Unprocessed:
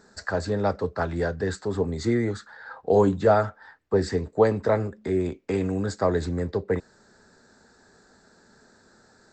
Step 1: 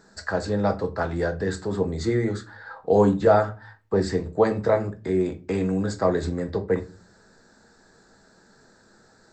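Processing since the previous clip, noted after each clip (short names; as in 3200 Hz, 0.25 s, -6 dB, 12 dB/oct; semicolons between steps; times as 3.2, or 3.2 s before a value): shoebox room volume 140 m³, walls furnished, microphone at 0.66 m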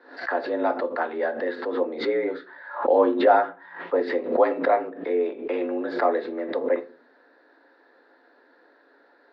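mistuned SSB +67 Hz 230–3500 Hz; backwards sustainer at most 110 dB/s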